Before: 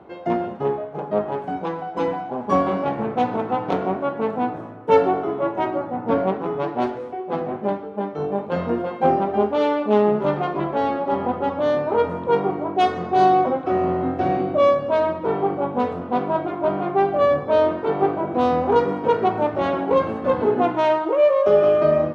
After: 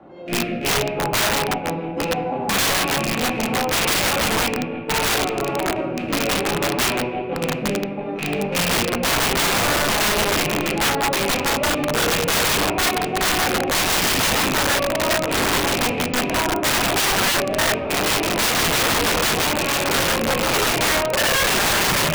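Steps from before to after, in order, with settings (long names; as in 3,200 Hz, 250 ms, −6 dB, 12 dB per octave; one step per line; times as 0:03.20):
loose part that buzzes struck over −28 dBFS, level −10 dBFS
0:17.05–0:17.86: mains-hum notches 60/120/180/240/300/360/420/480/540/600 Hz
square-wave tremolo 6.2 Hz, depth 65%, duty 50%
rotating-speaker cabinet horn 0.7 Hz
on a send: bucket-brigade delay 167 ms, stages 4,096, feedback 71%, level −14.5 dB
on the sum: rectangular room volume 360 cubic metres, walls mixed, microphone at 2.3 metres
wrap-around overflow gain 14 dB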